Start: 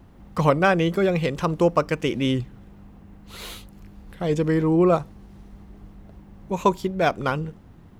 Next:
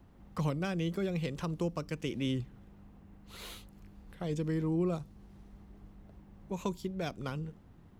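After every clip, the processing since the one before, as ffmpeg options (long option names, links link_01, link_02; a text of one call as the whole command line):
ffmpeg -i in.wav -filter_complex "[0:a]acrossover=split=310|3000[link_01][link_02][link_03];[link_02]acompressor=threshold=-31dB:ratio=4[link_04];[link_01][link_04][link_03]amix=inputs=3:normalize=0,volume=-9dB" out.wav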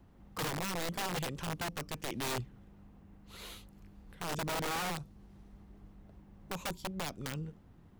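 ffmpeg -i in.wav -af "aeval=exprs='(mod(28.2*val(0)+1,2)-1)/28.2':channel_layout=same,volume=-1.5dB" out.wav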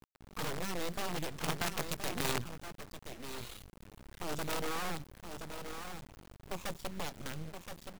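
ffmpeg -i in.wav -filter_complex "[0:a]asplit=2[link_01][link_02];[link_02]aecho=0:1:1023:0.422[link_03];[link_01][link_03]amix=inputs=2:normalize=0,acrusher=bits=6:dc=4:mix=0:aa=0.000001,volume=2.5dB" out.wav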